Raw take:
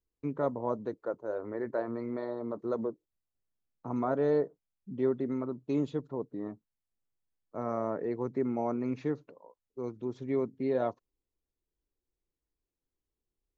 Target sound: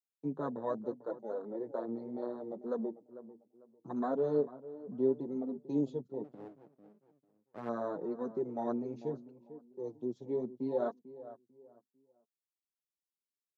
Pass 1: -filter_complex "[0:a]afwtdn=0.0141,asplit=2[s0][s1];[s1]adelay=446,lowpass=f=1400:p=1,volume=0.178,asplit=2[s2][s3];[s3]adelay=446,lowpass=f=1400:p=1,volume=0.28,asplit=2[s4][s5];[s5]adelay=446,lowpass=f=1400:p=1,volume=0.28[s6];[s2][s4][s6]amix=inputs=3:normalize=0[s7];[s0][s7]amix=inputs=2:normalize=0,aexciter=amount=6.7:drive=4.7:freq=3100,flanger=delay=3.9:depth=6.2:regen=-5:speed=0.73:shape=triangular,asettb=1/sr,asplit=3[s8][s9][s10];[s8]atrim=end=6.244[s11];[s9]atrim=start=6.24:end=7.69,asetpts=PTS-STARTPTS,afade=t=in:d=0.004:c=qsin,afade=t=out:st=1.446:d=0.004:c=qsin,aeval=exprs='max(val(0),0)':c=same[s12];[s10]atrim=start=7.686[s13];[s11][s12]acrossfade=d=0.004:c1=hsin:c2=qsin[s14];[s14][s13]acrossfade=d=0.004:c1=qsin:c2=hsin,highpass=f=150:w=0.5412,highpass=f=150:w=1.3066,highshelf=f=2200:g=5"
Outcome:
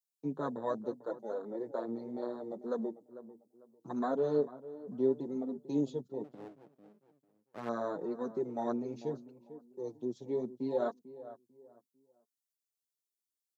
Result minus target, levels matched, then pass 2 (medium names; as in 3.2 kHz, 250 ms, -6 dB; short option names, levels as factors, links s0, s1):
4 kHz band +7.5 dB
-filter_complex "[0:a]afwtdn=0.0141,asplit=2[s0][s1];[s1]adelay=446,lowpass=f=1400:p=1,volume=0.178,asplit=2[s2][s3];[s3]adelay=446,lowpass=f=1400:p=1,volume=0.28,asplit=2[s4][s5];[s5]adelay=446,lowpass=f=1400:p=1,volume=0.28[s6];[s2][s4][s6]amix=inputs=3:normalize=0[s7];[s0][s7]amix=inputs=2:normalize=0,aexciter=amount=6.7:drive=4.7:freq=3100,flanger=delay=3.9:depth=6.2:regen=-5:speed=0.73:shape=triangular,asettb=1/sr,asplit=3[s8][s9][s10];[s8]atrim=end=6.244[s11];[s9]atrim=start=6.24:end=7.69,asetpts=PTS-STARTPTS,afade=t=in:d=0.004:c=qsin,afade=t=out:st=1.446:d=0.004:c=qsin,aeval=exprs='max(val(0),0)':c=same[s12];[s10]atrim=start=7.686[s13];[s11][s12]acrossfade=d=0.004:c1=hsin:c2=qsin[s14];[s14][s13]acrossfade=d=0.004:c1=qsin:c2=hsin,highpass=f=150:w=0.5412,highpass=f=150:w=1.3066,highshelf=f=2200:g=-5.5"